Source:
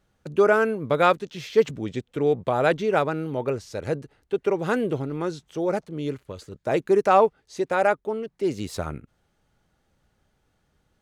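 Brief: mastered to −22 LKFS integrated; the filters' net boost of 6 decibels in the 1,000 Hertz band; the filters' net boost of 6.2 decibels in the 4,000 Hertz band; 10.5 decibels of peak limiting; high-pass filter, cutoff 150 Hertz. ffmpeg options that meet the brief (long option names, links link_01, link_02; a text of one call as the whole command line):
ffmpeg -i in.wav -af "highpass=150,equalizer=frequency=1000:width_type=o:gain=8,equalizer=frequency=4000:width_type=o:gain=7,volume=3dB,alimiter=limit=-8dB:level=0:latency=1" out.wav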